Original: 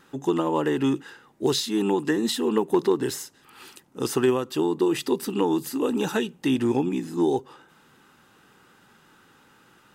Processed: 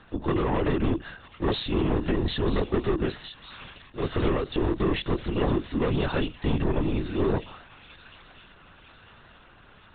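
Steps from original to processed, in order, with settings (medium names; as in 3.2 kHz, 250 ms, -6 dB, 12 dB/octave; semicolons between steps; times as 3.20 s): saturation -24 dBFS, distortion -9 dB; feedback echo behind a high-pass 952 ms, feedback 49%, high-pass 2.3 kHz, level -8 dB; LPC vocoder at 8 kHz whisper; trim +3.5 dB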